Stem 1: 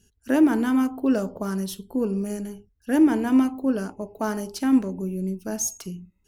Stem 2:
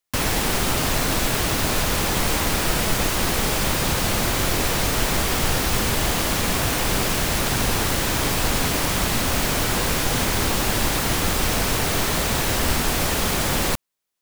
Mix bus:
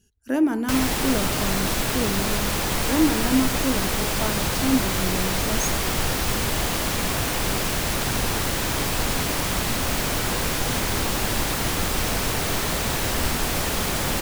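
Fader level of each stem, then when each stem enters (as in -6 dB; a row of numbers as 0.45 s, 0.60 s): -2.5 dB, -2.5 dB; 0.00 s, 0.55 s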